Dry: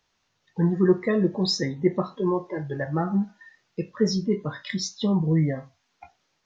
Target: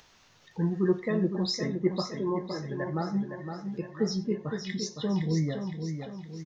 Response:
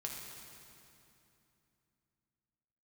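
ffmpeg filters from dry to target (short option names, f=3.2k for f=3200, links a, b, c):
-filter_complex "[0:a]asplit=2[a][b];[b]aecho=0:1:92:0.0891[c];[a][c]amix=inputs=2:normalize=0,acompressor=mode=upward:threshold=-38dB:ratio=2.5,asplit=2[d][e];[e]aecho=0:1:513|1026|1539|2052|2565|3078:0.447|0.214|0.103|0.0494|0.0237|0.0114[f];[d][f]amix=inputs=2:normalize=0,volume=-6dB"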